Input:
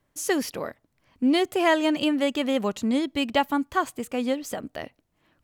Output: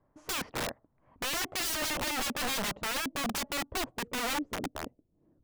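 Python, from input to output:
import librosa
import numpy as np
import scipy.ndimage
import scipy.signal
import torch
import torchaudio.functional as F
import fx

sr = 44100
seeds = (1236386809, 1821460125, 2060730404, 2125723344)

y = fx.filter_sweep_lowpass(x, sr, from_hz=1000.0, to_hz=400.0, start_s=1.23, end_s=4.55, q=1.3)
y = (np.mod(10.0 ** (27.5 / 20.0) * y + 1.0, 2.0) - 1.0) / 10.0 ** (27.5 / 20.0)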